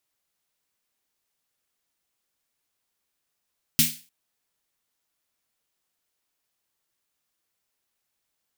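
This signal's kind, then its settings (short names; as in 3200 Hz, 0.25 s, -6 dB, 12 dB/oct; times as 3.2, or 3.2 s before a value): snare drum length 0.30 s, tones 160 Hz, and 240 Hz, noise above 2200 Hz, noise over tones 8 dB, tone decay 0.28 s, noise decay 0.35 s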